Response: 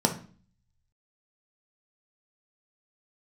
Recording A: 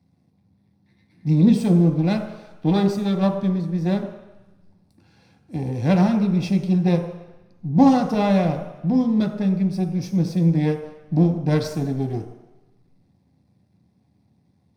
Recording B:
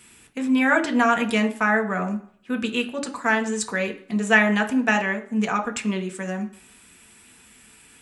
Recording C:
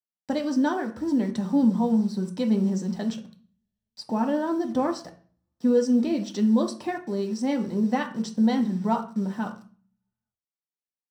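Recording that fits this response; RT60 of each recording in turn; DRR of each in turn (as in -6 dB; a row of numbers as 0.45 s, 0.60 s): C; 1.0 s, 0.55 s, 0.40 s; 3.5 dB, 4.0 dB, 3.0 dB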